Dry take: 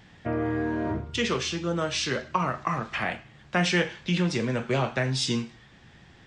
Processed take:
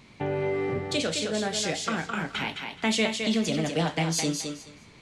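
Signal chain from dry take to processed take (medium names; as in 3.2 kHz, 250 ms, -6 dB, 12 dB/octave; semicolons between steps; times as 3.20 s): thinning echo 266 ms, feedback 20%, high-pass 210 Hz, level -5 dB; tape speed +25%; dynamic bell 1.2 kHz, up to -6 dB, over -39 dBFS, Q 1.1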